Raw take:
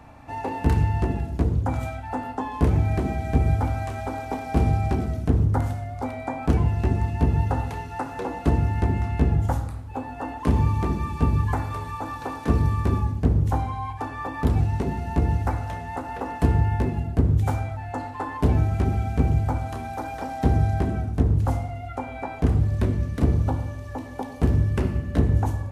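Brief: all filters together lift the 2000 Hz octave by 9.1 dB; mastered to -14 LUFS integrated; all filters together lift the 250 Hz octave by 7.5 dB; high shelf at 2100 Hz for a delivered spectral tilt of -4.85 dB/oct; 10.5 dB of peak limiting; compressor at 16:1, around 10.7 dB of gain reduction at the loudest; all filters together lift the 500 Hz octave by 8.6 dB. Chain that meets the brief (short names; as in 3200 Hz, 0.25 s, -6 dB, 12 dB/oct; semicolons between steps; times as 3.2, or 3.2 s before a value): bell 250 Hz +7 dB; bell 500 Hz +8 dB; bell 2000 Hz +6 dB; high shelf 2100 Hz +8.5 dB; compressor 16:1, threshold -20 dBFS; gain +14 dB; limiter -3.5 dBFS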